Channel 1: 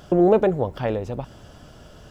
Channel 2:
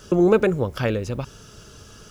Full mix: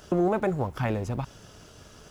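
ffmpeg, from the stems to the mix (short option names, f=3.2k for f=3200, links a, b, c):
-filter_complex "[0:a]highpass=f=100:p=1,acrossover=split=420[a][b];[a]acompressor=threshold=-29dB:ratio=6[c];[c][b]amix=inputs=2:normalize=0,aeval=exprs='sgn(val(0))*max(abs(val(0))-0.00335,0)':c=same,volume=-0.5dB[d];[1:a]volume=-7dB[e];[d][e]amix=inputs=2:normalize=0,alimiter=limit=-16dB:level=0:latency=1:release=196"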